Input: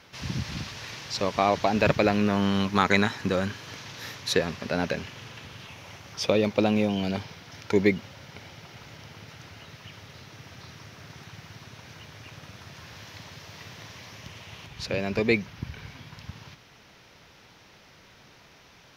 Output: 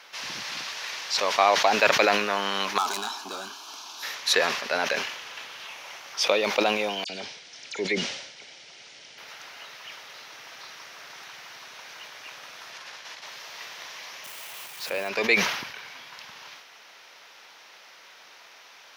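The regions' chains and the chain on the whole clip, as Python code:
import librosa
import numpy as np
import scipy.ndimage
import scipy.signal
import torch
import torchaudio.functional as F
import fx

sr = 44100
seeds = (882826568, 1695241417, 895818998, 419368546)

y = fx.chain(x, sr, fx.clip_hard(threshold_db=-22.5),
    fx.fixed_phaser(hz=520.0, stages=6), at=(2.78, 4.03))
y = fx.chain(y, sr, fx.steep_lowpass(hz=9400.0, slope=96),
    fx.peak_eq(hz=1100.0, db=-13.0, octaves=1.6),
    fx.dispersion(late='lows', ms=56.0, hz=3000.0), at=(7.04, 9.18))
y = fx.chain(y, sr, fx.lowpass(hz=11000.0, slope=12),
    fx.over_compress(threshold_db=-46.0, ratio=-0.5), at=(12.72, 13.26))
y = fx.chain(y, sr, fx.crossing_spikes(level_db=-30.5),
    fx.high_shelf(hz=2600.0, db=-9.5), at=(14.24, 15.09))
y = scipy.signal.sosfilt(scipy.signal.butter(2, 700.0, 'highpass', fs=sr, output='sos'), y)
y = fx.sustainer(y, sr, db_per_s=61.0)
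y = y * 10.0 ** (5.5 / 20.0)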